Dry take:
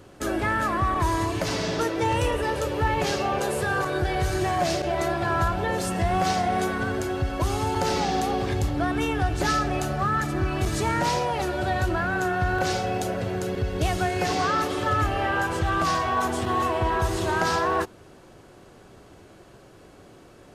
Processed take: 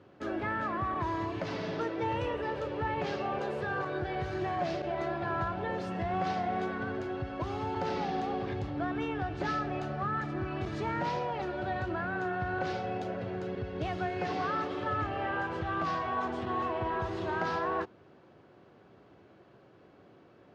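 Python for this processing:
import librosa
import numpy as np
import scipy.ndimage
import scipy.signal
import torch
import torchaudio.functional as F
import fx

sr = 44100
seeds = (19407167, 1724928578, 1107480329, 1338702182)

y = scipy.signal.sosfilt(scipy.signal.butter(2, 110.0, 'highpass', fs=sr, output='sos'), x)
y = fx.air_absorb(y, sr, metres=240.0)
y = y * 10.0 ** (-7.0 / 20.0)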